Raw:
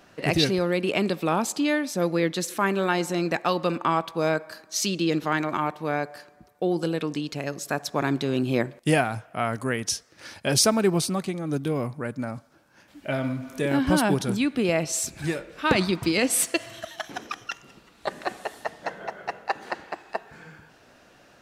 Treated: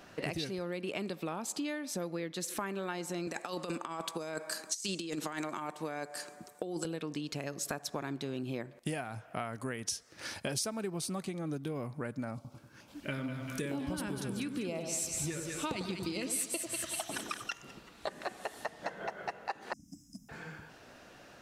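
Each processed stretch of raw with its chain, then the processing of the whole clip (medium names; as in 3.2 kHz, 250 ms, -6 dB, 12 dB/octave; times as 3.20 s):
3.27–6.85 s: high-pass 170 Hz + peaking EQ 8 kHz +13 dB 0.95 oct + compressor with a negative ratio -27 dBFS, ratio -0.5
12.35–17.50 s: LFO notch square 2.2 Hz 710–1700 Hz + two-band feedback delay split 1.2 kHz, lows 95 ms, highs 196 ms, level -7 dB
19.73–20.29 s: brick-wall FIR band-stop 300–5000 Hz + waveshaping leveller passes 1
whole clip: compression 10:1, threshold -34 dBFS; dynamic bell 9 kHz, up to +4 dB, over -56 dBFS, Q 1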